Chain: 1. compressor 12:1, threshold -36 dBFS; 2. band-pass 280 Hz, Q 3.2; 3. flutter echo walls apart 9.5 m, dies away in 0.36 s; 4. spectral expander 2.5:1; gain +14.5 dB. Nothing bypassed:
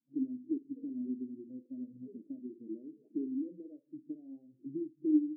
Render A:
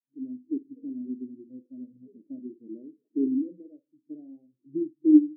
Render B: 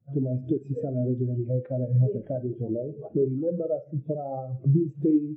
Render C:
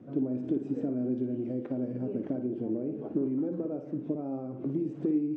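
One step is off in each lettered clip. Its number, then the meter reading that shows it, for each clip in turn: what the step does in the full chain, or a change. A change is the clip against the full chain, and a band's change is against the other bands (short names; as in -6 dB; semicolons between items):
1, mean gain reduction 7.0 dB; 2, crest factor change -5.0 dB; 4, crest factor change -6.5 dB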